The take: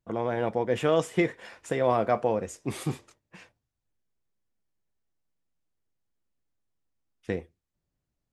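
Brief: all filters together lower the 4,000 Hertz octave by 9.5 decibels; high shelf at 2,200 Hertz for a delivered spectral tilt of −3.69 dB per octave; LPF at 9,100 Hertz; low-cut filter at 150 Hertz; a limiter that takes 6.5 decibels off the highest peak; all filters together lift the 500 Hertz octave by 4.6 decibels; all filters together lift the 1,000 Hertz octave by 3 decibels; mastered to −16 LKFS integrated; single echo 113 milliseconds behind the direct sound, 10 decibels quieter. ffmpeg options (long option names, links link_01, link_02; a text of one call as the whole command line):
ffmpeg -i in.wav -af "highpass=150,lowpass=9100,equalizer=frequency=500:width_type=o:gain=5,equalizer=frequency=1000:width_type=o:gain=3.5,highshelf=frequency=2200:gain=-7.5,equalizer=frequency=4000:width_type=o:gain=-6.5,alimiter=limit=-14dB:level=0:latency=1,aecho=1:1:113:0.316,volume=10.5dB" out.wav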